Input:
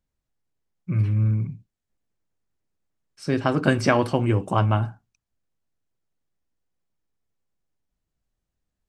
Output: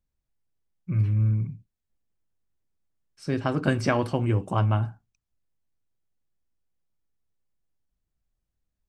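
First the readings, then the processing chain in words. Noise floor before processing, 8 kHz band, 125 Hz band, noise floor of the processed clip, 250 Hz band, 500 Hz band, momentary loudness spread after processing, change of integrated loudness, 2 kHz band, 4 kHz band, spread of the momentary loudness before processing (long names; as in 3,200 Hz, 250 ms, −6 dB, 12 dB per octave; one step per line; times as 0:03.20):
−83 dBFS, −5.0 dB, −1.5 dB, −83 dBFS, −4.0 dB, −4.5 dB, 11 LU, −3.0 dB, −5.0 dB, −5.0 dB, 12 LU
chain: low-shelf EQ 110 Hz +7 dB
level −5 dB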